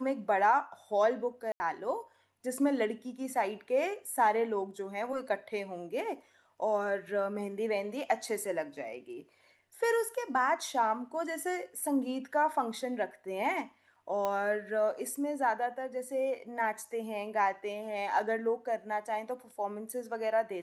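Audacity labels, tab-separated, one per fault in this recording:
1.520000	1.600000	gap 80 ms
14.250000	14.250000	pop -19 dBFS

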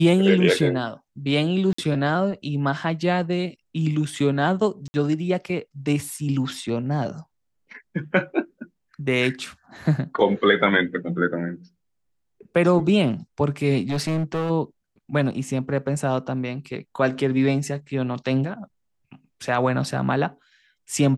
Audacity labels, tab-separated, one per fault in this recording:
1.730000	1.780000	gap 54 ms
4.880000	4.940000	gap 60 ms
13.890000	14.510000	clipped -20.5 dBFS

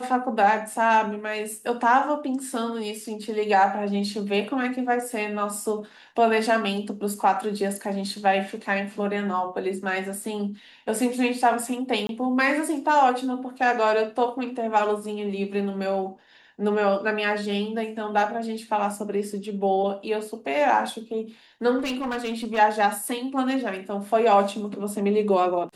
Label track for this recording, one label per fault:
12.070000	12.090000	gap 22 ms
21.780000	22.590000	clipped -24 dBFS

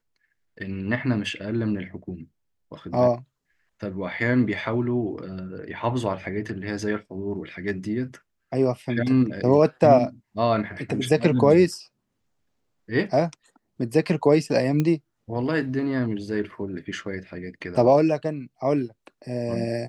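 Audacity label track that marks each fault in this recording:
14.800000	14.800000	pop -12 dBFS

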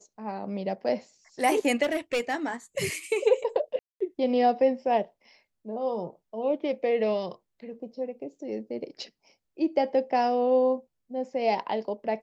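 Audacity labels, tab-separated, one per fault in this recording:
1.820000	2.490000	clipped -21.5 dBFS
3.790000	4.000000	gap 0.215 s

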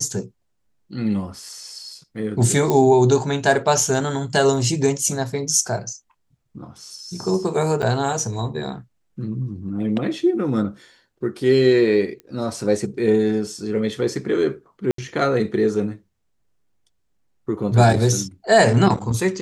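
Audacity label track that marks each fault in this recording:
2.700000	2.700000	pop -7 dBFS
7.820000	7.830000	gap 6 ms
12.200000	12.200000	pop -23 dBFS
14.910000	14.980000	gap 73 ms

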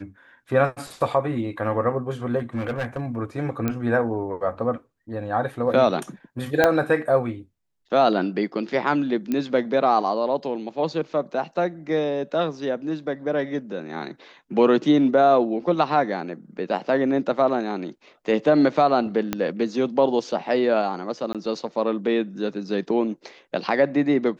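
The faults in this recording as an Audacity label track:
2.380000	3.060000	clipped -22 dBFS
3.680000	3.680000	pop -11 dBFS
6.640000	6.640000	pop -4 dBFS
9.320000	9.320000	pop -13 dBFS
19.330000	19.330000	pop -9 dBFS
21.330000	21.350000	gap 17 ms

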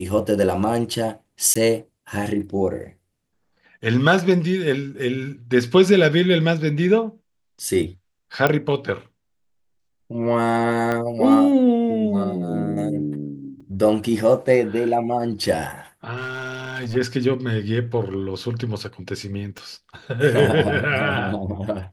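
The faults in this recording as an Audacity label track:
1.540000	1.550000	gap 15 ms
8.470000	8.470000	pop -6 dBFS
10.920000	10.920000	pop -12 dBFS
13.600000	13.600000	gap 4.7 ms
16.160000	16.970000	clipped -24 dBFS
19.580000	19.580000	pop -21 dBFS

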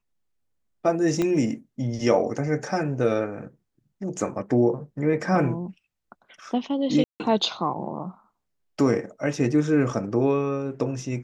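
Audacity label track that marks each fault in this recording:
1.220000	1.220000	pop -12 dBFS
7.040000	7.200000	gap 0.159 s

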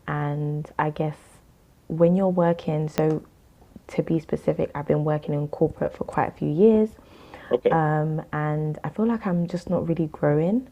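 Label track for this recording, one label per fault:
2.980000	2.980000	pop -7 dBFS

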